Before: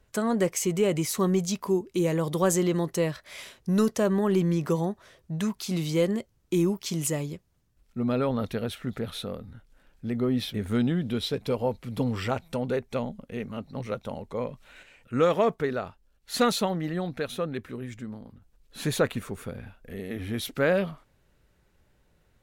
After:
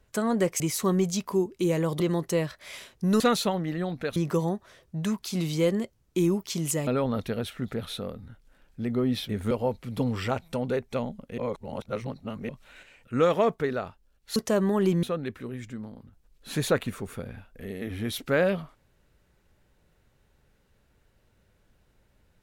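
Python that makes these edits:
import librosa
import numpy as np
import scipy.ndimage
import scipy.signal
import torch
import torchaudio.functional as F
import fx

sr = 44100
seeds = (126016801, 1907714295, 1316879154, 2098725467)

y = fx.edit(x, sr, fx.cut(start_s=0.6, length_s=0.35),
    fx.cut(start_s=2.35, length_s=0.3),
    fx.swap(start_s=3.85, length_s=0.67, other_s=16.36, other_length_s=0.96),
    fx.cut(start_s=7.23, length_s=0.89),
    fx.cut(start_s=10.76, length_s=0.75),
    fx.reverse_span(start_s=13.38, length_s=1.11), tone=tone)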